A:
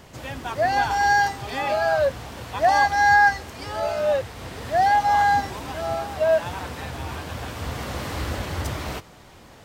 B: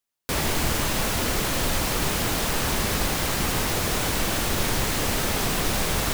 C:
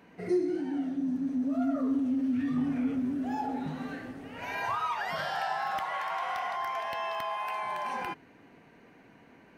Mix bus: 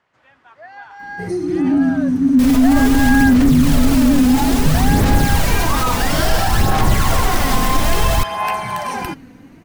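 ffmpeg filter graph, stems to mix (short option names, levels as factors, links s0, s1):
-filter_complex "[0:a]acontrast=32,bandpass=f=1500:t=q:w=1.4:csg=0,volume=0.126[s0];[1:a]alimiter=limit=0.15:level=0:latency=1:release=366,adelay=2100,volume=0.422[s1];[2:a]bass=f=250:g=9,treble=f=4000:g=13,adelay=1000,volume=0.708[s2];[s1][s2]amix=inputs=2:normalize=0,aphaser=in_gain=1:out_gain=1:delay=4:decay=0.48:speed=0.59:type=sinusoidal,alimiter=limit=0.0794:level=0:latency=1:release=14,volume=1[s3];[s0][s3]amix=inputs=2:normalize=0,lowshelf=f=280:g=10,dynaudnorm=f=260:g=13:m=5.31"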